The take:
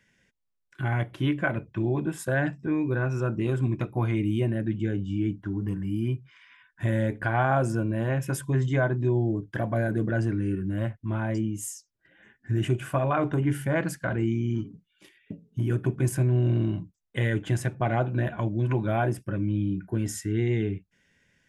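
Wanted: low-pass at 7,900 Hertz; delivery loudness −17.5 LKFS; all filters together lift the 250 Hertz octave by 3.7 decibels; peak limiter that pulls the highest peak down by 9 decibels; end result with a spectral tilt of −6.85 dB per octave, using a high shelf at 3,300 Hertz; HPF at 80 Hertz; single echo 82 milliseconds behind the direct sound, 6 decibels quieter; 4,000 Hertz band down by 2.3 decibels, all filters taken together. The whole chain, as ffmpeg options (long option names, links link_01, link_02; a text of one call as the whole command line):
ffmpeg -i in.wav -af "highpass=80,lowpass=7900,equalizer=frequency=250:width_type=o:gain=5,highshelf=frequency=3300:gain=6.5,equalizer=frequency=4000:width_type=o:gain=-8.5,alimiter=limit=-18dB:level=0:latency=1,aecho=1:1:82:0.501,volume=9.5dB" out.wav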